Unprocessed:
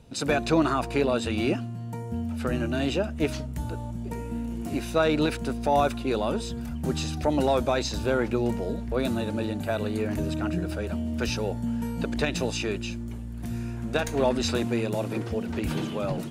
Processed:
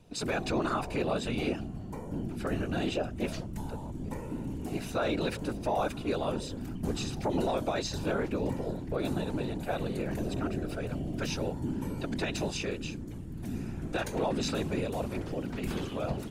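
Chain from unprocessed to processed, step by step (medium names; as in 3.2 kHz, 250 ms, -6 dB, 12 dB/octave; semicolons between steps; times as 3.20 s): whisper effect; peak limiter -16 dBFS, peak gain reduction 6 dB; trim -4.5 dB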